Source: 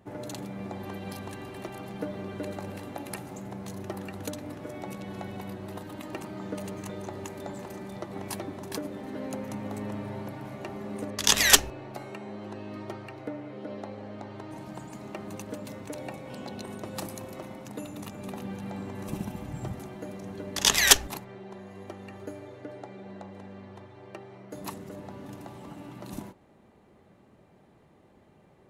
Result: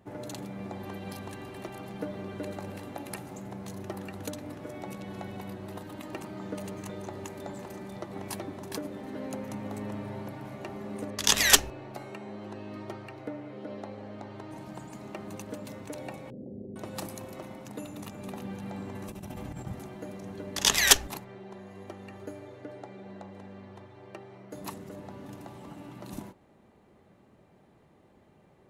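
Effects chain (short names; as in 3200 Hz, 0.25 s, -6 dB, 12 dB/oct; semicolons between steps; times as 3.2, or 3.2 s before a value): 16.3–16.76 steep low-pass 510 Hz 36 dB/oct; 18.95–19.67 negative-ratio compressor -39 dBFS, ratio -1; gain -1.5 dB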